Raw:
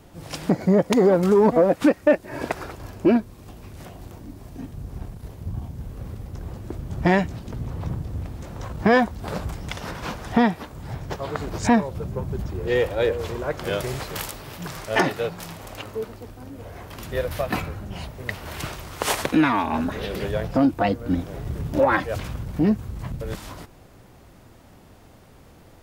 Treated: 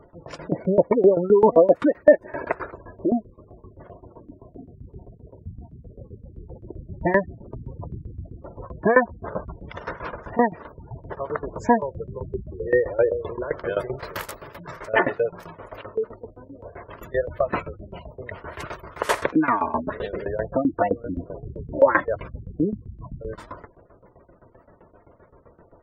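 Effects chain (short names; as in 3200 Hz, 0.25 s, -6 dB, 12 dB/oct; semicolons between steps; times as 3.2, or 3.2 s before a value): 3.97–6.26 HPF 63 Hz 6 dB/oct; spectral gate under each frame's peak -20 dB strong; band shelf 860 Hz +8.5 dB 2.8 oct; tremolo saw down 7.7 Hz, depth 90%; Butterworth band-stop 780 Hz, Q 6.6; gain -2 dB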